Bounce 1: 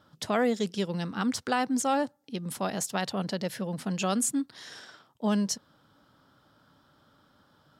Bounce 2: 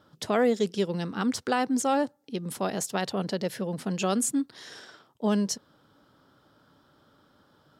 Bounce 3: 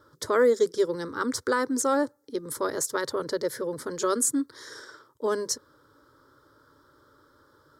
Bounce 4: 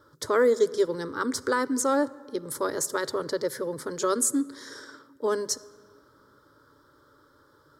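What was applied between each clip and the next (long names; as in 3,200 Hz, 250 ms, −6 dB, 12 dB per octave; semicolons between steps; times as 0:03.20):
parametric band 400 Hz +5.5 dB 0.85 octaves
phaser with its sweep stopped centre 730 Hz, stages 6; level +5 dB
convolution reverb RT60 2.1 s, pre-delay 7 ms, DRR 16.5 dB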